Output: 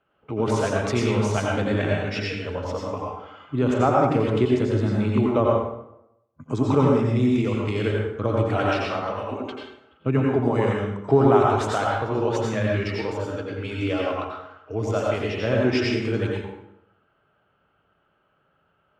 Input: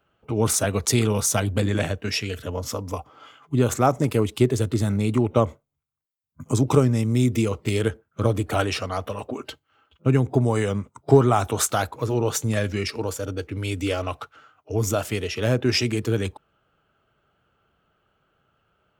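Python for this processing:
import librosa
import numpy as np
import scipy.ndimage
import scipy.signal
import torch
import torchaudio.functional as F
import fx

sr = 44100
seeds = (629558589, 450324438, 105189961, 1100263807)

y = scipy.signal.sosfilt(scipy.signal.butter(2, 3000.0, 'lowpass', fs=sr, output='sos'), x)
y = fx.low_shelf(y, sr, hz=110.0, db=-8.5)
y = fx.rev_plate(y, sr, seeds[0], rt60_s=0.82, hf_ratio=0.7, predelay_ms=75, drr_db=-2.5)
y = F.gain(torch.from_numpy(y), -2.0).numpy()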